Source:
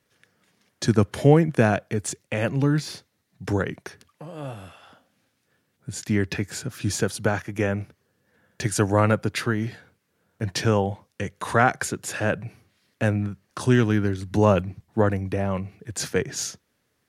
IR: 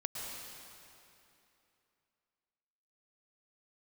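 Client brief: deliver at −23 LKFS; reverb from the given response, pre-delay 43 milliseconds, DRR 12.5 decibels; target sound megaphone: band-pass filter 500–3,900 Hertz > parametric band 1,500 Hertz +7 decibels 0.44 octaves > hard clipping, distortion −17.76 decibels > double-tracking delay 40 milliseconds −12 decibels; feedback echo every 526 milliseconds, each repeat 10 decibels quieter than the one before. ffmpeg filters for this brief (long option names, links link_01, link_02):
-filter_complex "[0:a]aecho=1:1:526|1052|1578|2104:0.316|0.101|0.0324|0.0104,asplit=2[link_01][link_02];[1:a]atrim=start_sample=2205,adelay=43[link_03];[link_02][link_03]afir=irnorm=-1:irlink=0,volume=-14dB[link_04];[link_01][link_04]amix=inputs=2:normalize=0,highpass=500,lowpass=3900,equalizer=frequency=1500:width_type=o:width=0.44:gain=7,asoftclip=type=hard:threshold=-11dB,asplit=2[link_05][link_06];[link_06]adelay=40,volume=-12dB[link_07];[link_05][link_07]amix=inputs=2:normalize=0,volume=4dB"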